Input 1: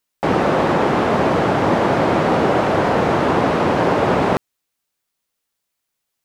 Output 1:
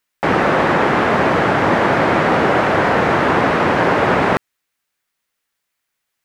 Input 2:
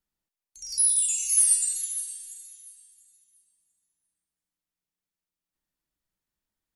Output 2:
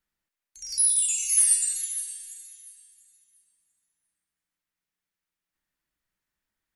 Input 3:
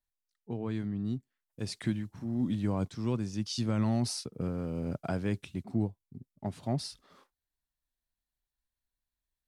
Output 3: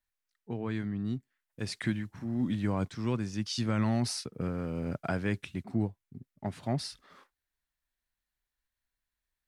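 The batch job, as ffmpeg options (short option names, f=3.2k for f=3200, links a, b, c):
-af "equalizer=f=1.8k:t=o:w=1.3:g=7.5"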